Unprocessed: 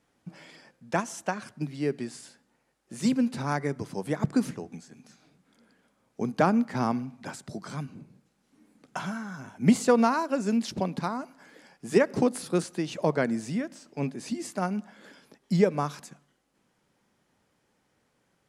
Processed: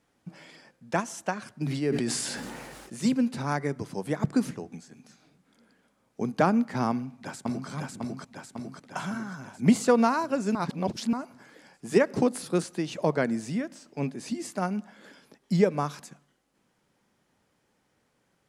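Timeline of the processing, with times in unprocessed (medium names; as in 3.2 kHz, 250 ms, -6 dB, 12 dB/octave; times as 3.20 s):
1.55–2.96 s: decay stretcher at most 25 dB/s
6.90–7.69 s: echo throw 550 ms, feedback 65%, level -1 dB
10.55–11.13 s: reverse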